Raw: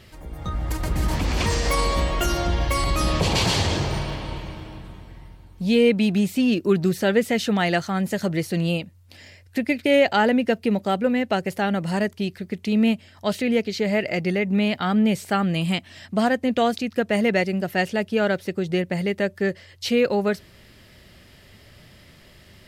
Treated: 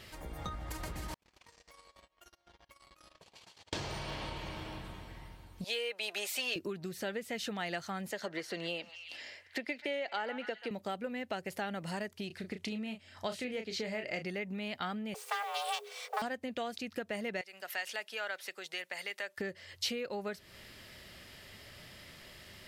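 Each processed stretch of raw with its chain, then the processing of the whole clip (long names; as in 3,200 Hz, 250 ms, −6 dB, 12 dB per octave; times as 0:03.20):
0:01.14–0:03.73: noise gate −18 dBFS, range −48 dB + low-shelf EQ 300 Hz −10.5 dB + downward compressor 12 to 1, threshold −52 dBFS
0:05.64–0:06.56: high-pass filter 530 Hz 24 dB per octave + comb filter 4.9 ms, depth 30%
0:08.11–0:10.71: three-way crossover with the lows and the highs turned down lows −18 dB, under 270 Hz, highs −13 dB, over 6,400 Hz + notch filter 2,500 Hz, Q 21 + echo through a band-pass that steps 131 ms, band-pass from 1,200 Hz, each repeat 0.7 octaves, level −10.5 dB
0:12.27–0:14.26: low-pass filter 11,000 Hz + double-tracking delay 32 ms −7.5 dB
0:15.14–0:16.22: lower of the sound and its delayed copy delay 2.6 ms + frequency shifter +410 Hz + noise that follows the level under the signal 24 dB
0:17.41–0:19.38: high-pass filter 920 Hz + downward compressor 2.5 to 1, threshold −35 dBFS + multiband upward and downward expander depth 70%
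whole clip: downward compressor 12 to 1, threshold −31 dBFS; low-shelf EQ 410 Hz −8.5 dB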